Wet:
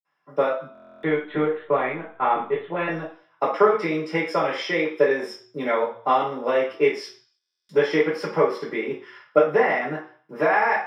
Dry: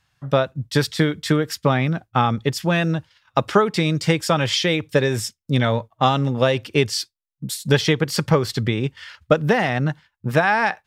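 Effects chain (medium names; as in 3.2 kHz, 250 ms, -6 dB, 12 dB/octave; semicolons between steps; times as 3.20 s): block-companded coder 7-bit; high-pass 240 Hz 12 dB/octave; 0.61–2.83 s: LPC vocoder at 8 kHz pitch kept; reverberation RT60 0.45 s, pre-delay 47 ms; dynamic bell 2.2 kHz, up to +6 dB, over -44 dBFS, Q 3.6; buffer glitch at 0.73/7.39 s, samples 1024, times 12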